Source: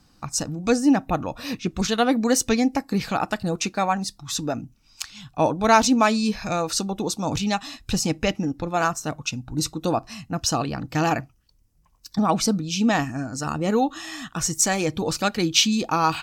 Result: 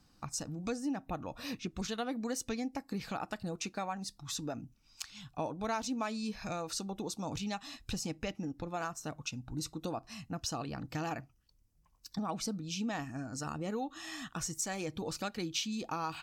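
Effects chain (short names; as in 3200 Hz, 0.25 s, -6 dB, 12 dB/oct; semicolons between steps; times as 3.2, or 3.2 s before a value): compressor 2.5:1, threshold -29 dBFS, peak gain reduction 12.5 dB; gain -8 dB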